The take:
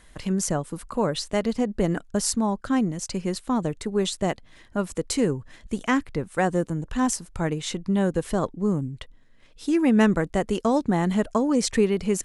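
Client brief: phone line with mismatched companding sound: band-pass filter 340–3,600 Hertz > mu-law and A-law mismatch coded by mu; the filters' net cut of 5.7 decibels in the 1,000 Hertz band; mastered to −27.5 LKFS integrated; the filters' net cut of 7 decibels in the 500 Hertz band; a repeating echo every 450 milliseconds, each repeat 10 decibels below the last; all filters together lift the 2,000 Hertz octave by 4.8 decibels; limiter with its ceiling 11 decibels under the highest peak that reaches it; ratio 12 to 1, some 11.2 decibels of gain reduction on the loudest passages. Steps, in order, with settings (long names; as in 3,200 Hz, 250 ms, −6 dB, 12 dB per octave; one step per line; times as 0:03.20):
parametric band 500 Hz −6 dB
parametric band 1,000 Hz −7 dB
parametric band 2,000 Hz +8.5 dB
downward compressor 12 to 1, threshold −28 dBFS
brickwall limiter −25.5 dBFS
band-pass filter 340–3,600 Hz
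repeating echo 450 ms, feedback 32%, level −10 dB
mu-law and A-law mismatch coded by mu
level +10.5 dB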